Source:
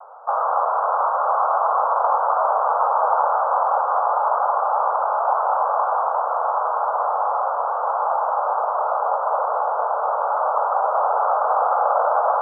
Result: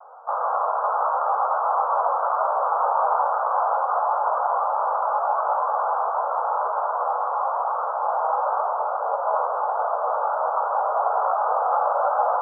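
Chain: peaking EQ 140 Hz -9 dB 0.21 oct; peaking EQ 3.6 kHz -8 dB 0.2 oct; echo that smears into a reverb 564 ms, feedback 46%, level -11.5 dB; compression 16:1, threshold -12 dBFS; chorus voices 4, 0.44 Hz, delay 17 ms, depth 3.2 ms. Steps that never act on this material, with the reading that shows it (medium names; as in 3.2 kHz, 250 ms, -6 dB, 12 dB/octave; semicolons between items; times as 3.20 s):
peaking EQ 140 Hz: input has nothing below 400 Hz; peaking EQ 3.6 kHz: input has nothing above 1.6 kHz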